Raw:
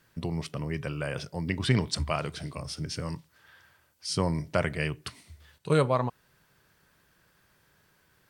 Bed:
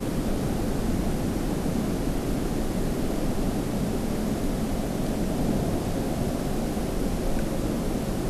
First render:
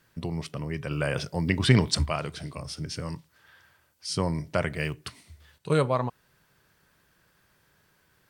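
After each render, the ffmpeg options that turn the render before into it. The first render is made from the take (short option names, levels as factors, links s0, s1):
-filter_complex "[0:a]asettb=1/sr,asplit=3[s0][s1][s2];[s0]atrim=end=4.734[s3];[s1]atrim=start=4.73:end=5.19,asetpts=PTS-STARTPTS,afade=t=in:d=0.004:c=qsin,afade=t=out:st=0.456:d=0.004:c=qsin,acrusher=bits=8:mode=log:mix=0:aa=0.000001[s4];[s2]atrim=start=5.186[s5];[s3][s4]acrossfade=d=0.004:c1=hsin:c2=qsin[s6];[s6][s5]acrossfade=d=0.004:c1=qsin:c2=hsin,asplit=3[s7][s8][s9];[s7]atrim=end=0.912[s10];[s8]atrim=start=0.908:end=2.062,asetpts=PTS-STARTPTS,volume=1.78[s11];[s9]atrim=start=2.058[s12];[s10][s11]acrossfade=d=0.004:c1=hsin:c2=hsin[s13];[s13][s12]acrossfade=d=0.004:c1=hsin:c2=hsin"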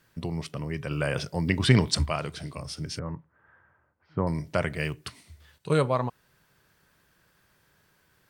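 -filter_complex "[0:a]asettb=1/sr,asplit=3[s0][s1][s2];[s0]atrim=end=2.994[s3];[s1]atrim=start=2.99:end=4.27,asetpts=PTS-STARTPTS,afade=t=in:d=0.004:c=qsin,afade=t=out:st=1.276:d=0.004:c=qsin,lowpass=f=1600:w=0.5412,lowpass=f=1600:w=1.3066[s4];[s2]atrim=start=4.266[s5];[s3][s4]acrossfade=d=0.004:c1=hsin:c2=qsin[s6];[s6][s5]acrossfade=d=0.004:c1=qsin:c2=hsin"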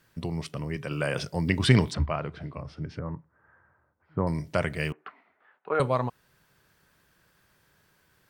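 -filter_complex "[0:a]asettb=1/sr,asplit=3[s0][s1][s2];[s0]atrim=end=0.764[s3];[s1]atrim=start=0.76:end=1.21,asetpts=PTS-STARTPTS,afade=t=in:d=0.004:c=qsin,afade=t=out:st=0.446:d=0.004:c=qsin,highpass=130[s4];[s2]atrim=start=1.206[s5];[s3][s4]acrossfade=d=0.004:c1=hsin:c2=qsin[s6];[s6][s5]acrossfade=d=0.004:c1=qsin:c2=hsin,asplit=3[s7][s8][s9];[s7]afade=t=out:st=1.92:d=0.02[s10];[s8]lowpass=1900,afade=t=in:st=1.92:d=0.02,afade=t=out:st=4.19:d=0.02[s11];[s9]afade=t=in:st=4.19:d=0.02[s12];[s10][s11][s12]amix=inputs=3:normalize=0,asettb=1/sr,asplit=3[s13][s14][s15];[s13]atrim=end=4.924[s16];[s14]atrim=start=4.92:end=5.8,asetpts=PTS-STARTPTS,afade=t=in:d=0.004:c=qsin,afade=t=out:st=0.876:d=0.004:c=qsin,highpass=f=290:w=0.5412,highpass=f=290:w=1.3066,equalizer=f=330:t=q:w=4:g=-8,equalizer=f=510:t=q:w=4:g=-3,equalizer=f=770:t=q:w=4:g=7,equalizer=f=1300:t=q:w=4:g=5,lowpass=f=2000:w=0.5412,lowpass=f=2000:w=1.3066[s17];[s15]atrim=start=5.796[s18];[s16][s17]acrossfade=d=0.004:c1=hsin:c2=qsin[s19];[s19][s18]acrossfade=d=0.004:c1=qsin:c2=hsin"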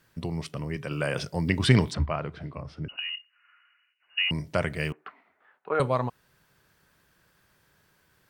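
-filter_complex "[0:a]asettb=1/sr,asplit=3[s0][s1][s2];[s0]atrim=end=2.884[s3];[s1]atrim=start=2.88:end=4.31,asetpts=PTS-STARTPTS,afade=t=in:d=0.004:c=qsin,afade=t=out:st=1.426:d=0.004:c=qsin,lowpass=f=2600:t=q:w=0.5098,lowpass=f=2600:t=q:w=0.6013,lowpass=f=2600:t=q:w=0.9,lowpass=f=2600:t=q:w=2.563,afreqshift=-3000[s4];[s2]atrim=start=4.306[s5];[s3][s4]acrossfade=d=0.004:c1=hsin:c2=qsin[s6];[s6][s5]acrossfade=d=0.004:c1=qsin:c2=hsin"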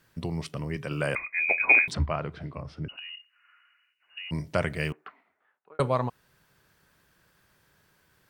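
-filter_complex "[0:a]asettb=1/sr,asplit=3[s0][s1][s2];[s0]atrim=end=1.154[s3];[s1]atrim=start=1.15:end=1.88,asetpts=PTS-STARTPTS,afade=t=in:d=0.004:c=qsin,afade=t=out:st=0.726:d=0.004:c=qsin,lowpass=f=2200:t=q:w=0.5098,lowpass=f=2200:t=q:w=0.6013,lowpass=f=2200:t=q:w=0.9,lowpass=f=2200:t=q:w=2.563,afreqshift=-2600[s4];[s2]atrim=start=1.876[s5];[s3][s4]acrossfade=d=0.004:c1=hsin:c2=qsin[s6];[s6][s5]acrossfade=d=0.004:c1=qsin:c2=hsin,asplit=3[s7][s8][s9];[s7]afade=t=out:st=2.93:d=0.02[s10];[s8]acompressor=threshold=0.0112:ratio=4:attack=3.2:release=140:knee=1:detection=peak,afade=t=in:st=2.93:d=0.02,afade=t=out:st=4.31:d=0.02[s11];[s9]afade=t=in:st=4.31:d=0.02[s12];[s10][s11][s12]amix=inputs=3:normalize=0,asplit=2[s13][s14];[s13]atrim=end=5.79,asetpts=PTS-STARTPTS,afade=t=out:st=4.9:d=0.89[s15];[s14]atrim=start=5.79,asetpts=PTS-STARTPTS,afade=t=in:d=0.004:c=hsin[s16];[s15][s16]concat=n=2:v=0:a=1"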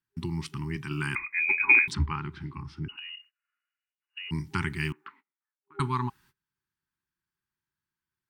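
-af "agate=range=0.0501:threshold=0.00178:ratio=16:detection=peak,afftfilt=real='re*(1-between(b*sr/4096,400,800))':imag='im*(1-between(b*sr/4096,400,800))':win_size=4096:overlap=0.75"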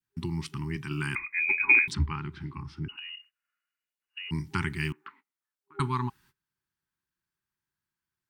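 -af "adynamicequalizer=threshold=0.00708:dfrequency=960:dqfactor=0.76:tfrequency=960:tqfactor=0.76:attack=5:release=100:ratio=0.375:range=2:mode=cutabove:tftype=bell"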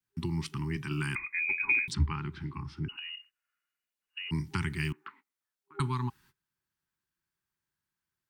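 -filter_complex "[0:a]acrossover=split=210|3000[s0][s1][s2];[s1]acompressor=threshold=0.0224:ratio=10[s3];[s0][s3][s2]amix=inputs=3:normalize=0"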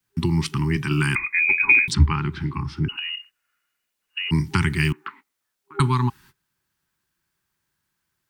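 -af "volume=3.76"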